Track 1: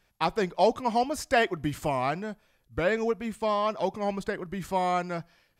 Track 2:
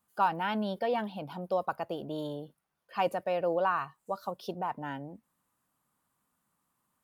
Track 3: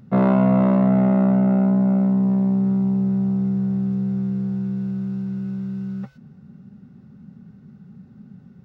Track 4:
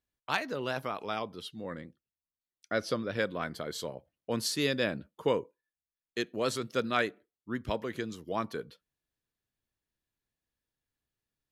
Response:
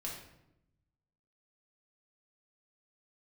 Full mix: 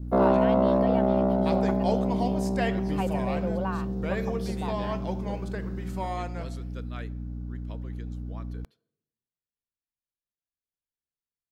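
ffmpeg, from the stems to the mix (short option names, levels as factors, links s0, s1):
-filter_complex "[0:a]adelay=1250,volume=0.355,asplit=2[s0][s1];[s1]volume=0.501[s2];[1:a]volume=0.631[s3];[2:a]highpass=f=280:w=0.5412,highpass=f=280:w=1.3066,equalizer=f=2300:t=o:w=1.4:g=-13,aeval=exprs='val(0)+0.0158*(sin(2*PI*60*n/s)+sin(2*PI*2*60*n/s)/2+sin(2*PI*3*60*n/s)/3+sin(2*PI*4*60*n/s)/4+sin(2*PI*5*60*n/s)/5)':c=same,volume=1.33[s4];[3:a]volume=0.168,asplit=2[s5][s6];[s6]volume=0.15[s7];[4:a]atrim=start_sample=2205[s8];[s2][s7]amix=inputs=2:normalize=0[s9];[s9][s8]afir=irnorm=-1:irlink=0[s10];[s0][s3][s4][s5][s10]amix=inputs=5:normalize=0,adynamicequalizer=threshold=0.00355:dfrequency=1300:dqfactor=3.7:tfrequency=1300:tqfactor=3.7:attack=5:release=100:ratio=0.375:range=2.5:mode=cutabove:tftype=bell"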